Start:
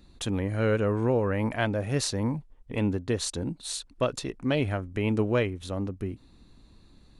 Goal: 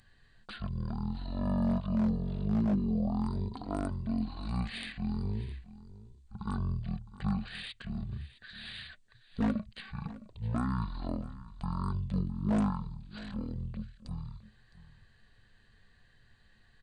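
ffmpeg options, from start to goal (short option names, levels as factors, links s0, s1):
-af "aemphasis=mode=production:type=75kf,deesser=0.8,equalizer=f=500:t=o:w=0.21:g=10,aeval=exprs='0.188*(abs(mod(val(0)/0.188+3,4)-2)-1)':c=same,aecho=1:1:283:0.133,asetrate=18846,aresample=44100,volume=0.398"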